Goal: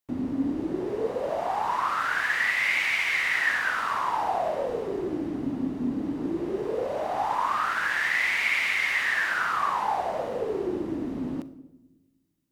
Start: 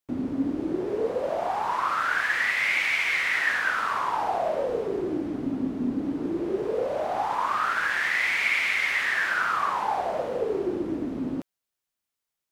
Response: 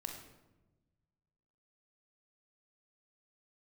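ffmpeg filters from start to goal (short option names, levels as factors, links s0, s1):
-filter_complex "[0:a]asplit=2[s0][s1];[1:a]atrim=start_sample=2205,highshelf=f=8000:g=8[s2];[s1][s2]afir=irnorm=-1:irlink=0,volume=0.501[s3];[s0][s3]amix=inputs=2:normalize=0,volume=0.708"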